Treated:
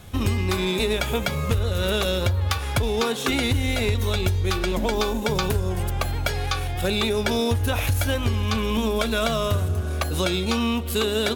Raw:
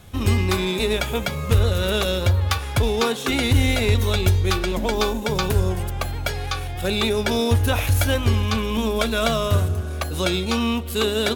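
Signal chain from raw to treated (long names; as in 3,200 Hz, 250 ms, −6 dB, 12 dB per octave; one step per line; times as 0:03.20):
downward compressor, threshold −21 dBFS, peak gain reduction 9 dB
level +2 dB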